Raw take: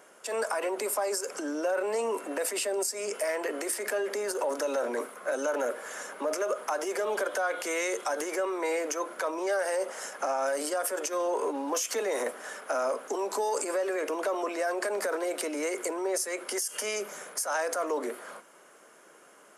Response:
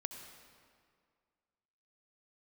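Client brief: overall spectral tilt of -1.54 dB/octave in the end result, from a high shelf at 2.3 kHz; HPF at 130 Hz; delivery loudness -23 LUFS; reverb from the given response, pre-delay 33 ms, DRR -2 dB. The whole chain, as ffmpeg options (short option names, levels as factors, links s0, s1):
-filter_complex "[0:a]highpass=130,highshelf=f=2300:g=-6.5,asplit=2[s0][s1];[1:a]atrim=start_sample=2205,adelay=33[s2];[s1][s2]afir=irnorm=-1:irlink=0,volume=1.5[s3];[s0][s3]amix=inputs=2:normalize=0,volume=1.78"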